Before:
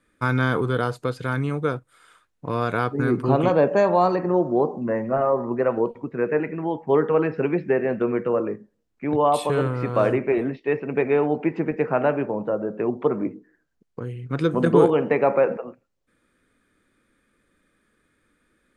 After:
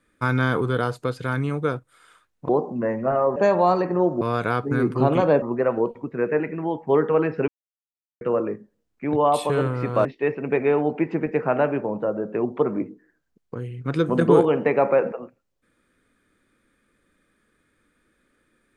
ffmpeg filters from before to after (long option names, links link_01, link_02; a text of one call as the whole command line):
ffmpeg -i in.wav -filter_complex "[0:a]asplit=8[link_01][link_02][link_03][link_04][link_05][link_06][link_07][link_08];[link_01]atrim=end=2.492[link_09];[link_02]atrim=start=4.548:end=5.422[link_10];[link_03]atrim=start=3.698:end=4.552[link_11];[link_04]atrim=start=2.488:end=3.702[link_12];[link_05]atrim=start=5.418:end=7.48,asetpts=PTS-STARTPTS,afade=type=out:start_time=2.058:duration=0.004:curve=hsin[link_13];[link_06]atrim=start=7.48:end=8.21,asetpts=PTS-STARTPTS,volume=0[link_14];[link_07]atrim=start=8.21:end=10.052,asetpts=PTS-STARTPTS,afade=type=in:duration=0.004:curve=hsin[link_15];[link_08]atrim=start=10.498[link_16];[link_09][link_10]acrossfade=duration=0.004:curve1=hsin:curve2=hsin[link_17];[link_17][link_11]acrossfade=duration=0.004:curve1=hsin:curve2=hsin[link_18];[link_18][link_12]acrossfade=duration=0.004:curve1=hsin:curve2=hsin[link_19];[link_13][link_14][link_15]concat=n=3:v=0:a=1[link_20];[link_19][link_20]acrossfade=duration=0.004:curve1=hsin:curve2=hsin[link_21];[link_21][link_16]acrossfade=duration=0.004:curve1=hsin:curve2=hsin" out.wav